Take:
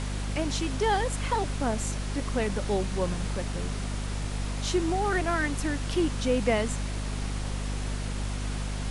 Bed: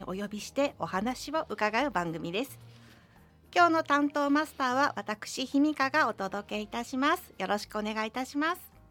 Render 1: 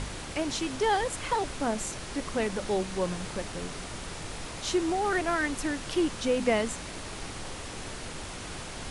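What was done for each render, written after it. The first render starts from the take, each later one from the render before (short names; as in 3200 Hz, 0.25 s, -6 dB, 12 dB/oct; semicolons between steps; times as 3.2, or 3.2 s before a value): de-hum 50 Hz, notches 5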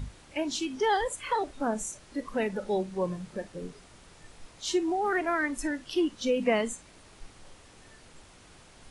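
noise print and reduce 15 dB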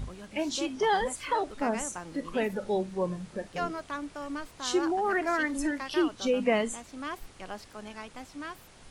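add bed -10.5 dB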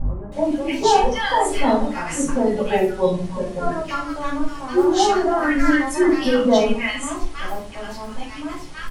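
bands offset in time lows, highs 0.32 s, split 1200 Hz; shoebox room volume 300 m³, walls furnished, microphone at 6.4 m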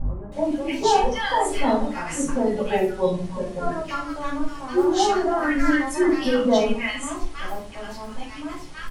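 gain -3 dB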